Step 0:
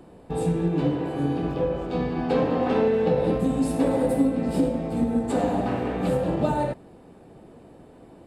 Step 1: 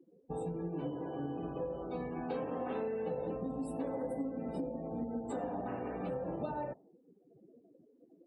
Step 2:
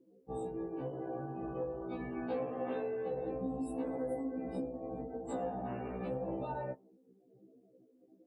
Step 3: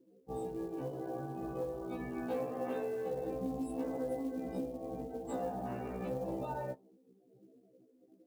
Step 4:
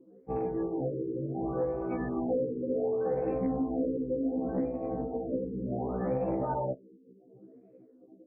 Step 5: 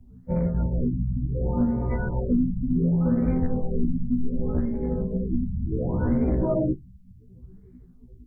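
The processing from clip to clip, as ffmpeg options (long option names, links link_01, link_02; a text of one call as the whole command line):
ffmpeg -i in.wav -af "lowshelf=frequency=210:gain=-8,afftdn=noise_reduction=34:noise_floor=-39,acompressor=threshold=-34dB:ratio=2.5,volume=-4.5dB" out.wav
ffmpeg -i in.wav -af "afftfilt=real='re*1.73*eq(mod(b,3),0)':imag='im*1.73*eq(mod(b,3),0)':win_size=2048:overlap=0.75,volume=1.5dB" out.wav
ffmpeg -i in.wav -af "acrusher=bits=7:mode=log:mix=0:aa=0.000001" out.wav
ffmpeg -i in.wav -filter_complex "[0:a]aexciter=amount=14.3:drive=4.6:freq=4700,asplit=2[link_01][link_02];[link_02]aeval=exprs='0.119*sin(PI/2*2*val(0)/0.119)':channel_layout=same,volume=-6dB[link_03];[link_01][link_03]amix=inputs=2:normalize=0,afftfilt=real='re*lt(b*sr/1024,500*pow(2700/500,0.5+0.5*sin(2*PI*0.68*pts/sr)))':imag='im*lt(b*sr/1024,500*pow(2700/500,0.5+0.5*sin(2*PI*0.68*pts/sr)))':win_size=1024:overlap=0.75" out.wav
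ffmpeg -i in.wav -af "acontrast=62,bandreject=frequency=124.3:width_type=h:width=4,bandreject=frequency=248.6:width_type=h:width=4,bandreject=frequency=372.9:width_type=h:width=4,bandreject=frequency=497.2:width_type=h:width=4,bandreject=frequency=621.5:width_type=h:width=4,bandreject=frequency=745.8:width_type=h:width=4,afreqshift=-270,volume=2dB" out.wav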